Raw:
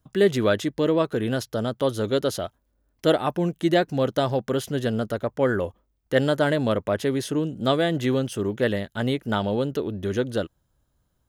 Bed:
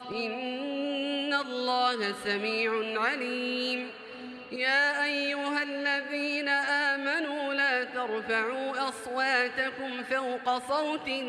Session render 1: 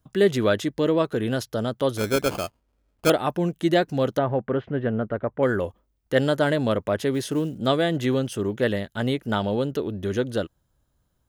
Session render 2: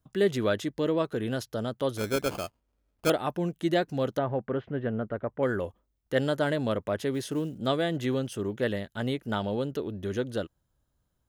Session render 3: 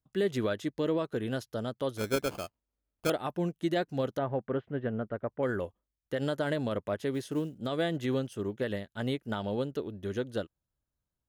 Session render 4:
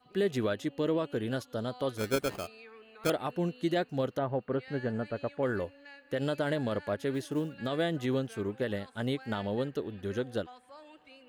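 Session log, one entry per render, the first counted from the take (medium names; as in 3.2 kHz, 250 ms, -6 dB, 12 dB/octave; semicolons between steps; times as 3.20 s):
1.97–3.10 s: sample-rate reducer 1.9 kHz; 4.18–5.43 s: low-pass 2.2 kHz 24 dB/octave; 7.14–7.58 s: short-mantissa float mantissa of 4-bit
trim -5.5 dB
peak limiter -19.5 dBFS, peak gain reduction 8 dB; upward expansion 1.5:1, over -49 dBFS
add bed -23 dB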